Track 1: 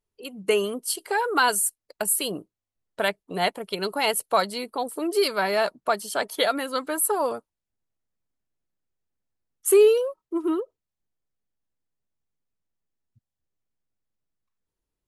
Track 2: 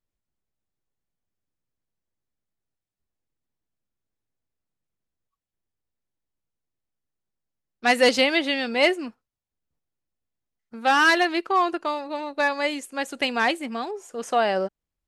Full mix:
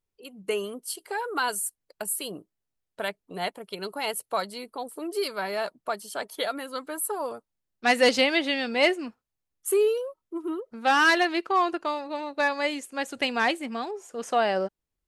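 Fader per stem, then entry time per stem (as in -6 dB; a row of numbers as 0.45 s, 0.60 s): -6.5 dB, -2.0 dB; 0.00 s, 0.00 s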